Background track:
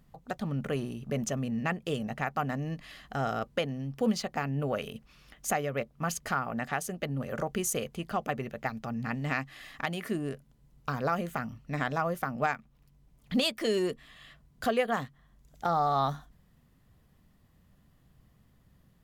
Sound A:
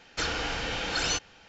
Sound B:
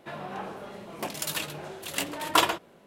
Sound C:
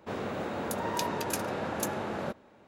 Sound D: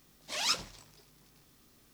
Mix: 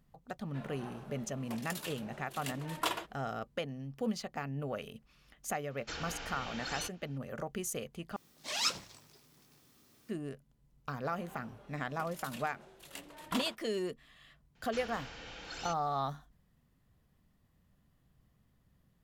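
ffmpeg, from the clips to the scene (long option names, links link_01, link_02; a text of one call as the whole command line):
ffmpeg -i bed.wav -i cue0.wav -i cue1.wav -i cue2.wav -i cue3.wav -filter_complex "[2:a]asplit=2[link_01][link_02];[1:a]asplit=2[link_03][link_04];[0:a]volume=-7dB[link_05];[4:a]highpass=80[link_06];[link_05]asplit=2[link_07][link_08];[link_07]atrim=end=8.164[link_09];[link_06]atrim=end=1.93,asetpts=PTS-STARTPTS,volume=-1.5dB[link_10];[link_08]atrim=start=10.086[link_11];[link_01]atrim=end=2.86,asetpts=PTS-STARTPTS,volume=-12dB,afade=type=in:duration=0.004:curve=hsin,afade=type=out:start_time=2.856:duration=0.004:curve=hsin,adelay=480[link_12];[link_03]atrim=end=1.48,asetpts=PTS-STARTPTS,volume=-12dB,afade=type=in:duration=0.004:curve=hsin,afade=type=out:start_time=1.476:duration=0.004:curve=hsin,adelay=5700[link_13];[link_02]atrim=end=2.86,asetpts=PTS-STARTPTS,volume=-17dB,afade=type=in:duration=0.004:curve=hsin,afade=type=out:start_time=2.856:duration=0.004:curve=hsin,adelay=10970[link_14];[link_04]atrim=end=1.48,asetpts=PTS-STARTPTS,volume=-16dB,afade=type=in:duration=0.004:curve=hsin,afade=type=out:start_time=1.476:duration=0.004:curve=hsin,adelay=14550[link_15];[link_09][link_10]acrossfade=duration=0.004:curve1=hsin:curve2=hsin[link_16];[link_16][link_11]acrossfade=duration=0.004:curve1=hsin:curve2=hsin[link_17];[link_17][link_12][link_13][link_14][link_15]amix=inputs=5:normalize=0" out.wav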